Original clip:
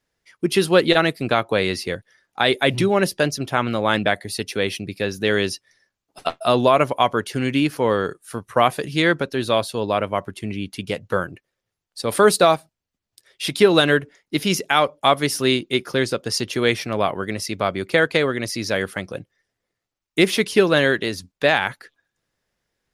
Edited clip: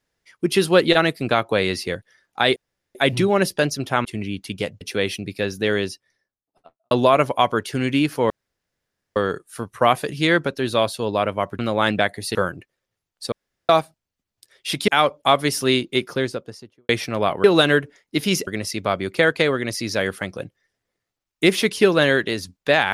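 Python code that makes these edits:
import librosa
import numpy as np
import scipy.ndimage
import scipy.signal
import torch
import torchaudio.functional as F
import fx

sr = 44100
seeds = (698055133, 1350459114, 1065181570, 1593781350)

y = fx.studio_fade_out(x, sr, start_s=5.01, length_s=1.51)
y = fx.studio_fade_out(y, sr, start_s=15.72, length_s=0.95)
y = fx.edit(y, sr, fx.insert_room_tone(at_s=2.56, length_s=0.39),
    fx.swap(start_s=3.66, length_s=0.76, other_s=10.34, other_length_s=0.76),
    fx.insert_room_tone(at_s=7.91, length_s=0.86),
    fx.room_tone_fill(start_s=12.07, length_s=0.37),
    fx.move(start_s=13.63, length_s=1.03, to_s=17.22), tone=tone)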